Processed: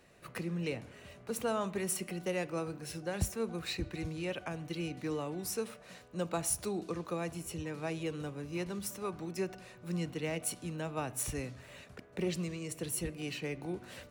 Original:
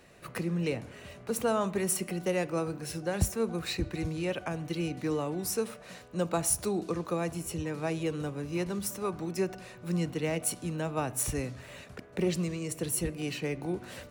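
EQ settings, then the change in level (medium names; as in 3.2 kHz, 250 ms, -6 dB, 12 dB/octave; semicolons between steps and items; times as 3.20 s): dynamic bell 2.9 kHz, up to +3 dB, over -49 dBFS, Q 0.82; -5.5 dB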